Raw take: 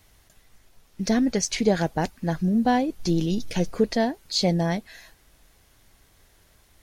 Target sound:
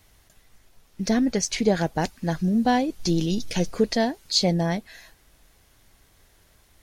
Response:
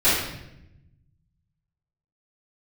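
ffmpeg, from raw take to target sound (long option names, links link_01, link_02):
-filter_complex "[0:a]asettb=1/sr,asplit=3[link_01][link_02][link_03];[link_01]atrim=end=1.954[link_04];[link_02]atrim=start=1.95:end=4.39,asetpts=PTS-STARTPTS,afade=type=in:duration=0.004:curve=qsin,afade=type=out:start_time=2.436:duration=0.004:curve=qsin,equalizer=frequency=5700:width=0.51:gain=4.5[link_05];[link_03]atrim=start=4.386[link_06];[link_04][link_05]acrossfade=duration=0.004:curve1=hsin:curve2=qsin[link_07];[link_07][link_06]acrossfade=duration=0.004:curve1=qsin:curve2=hsin"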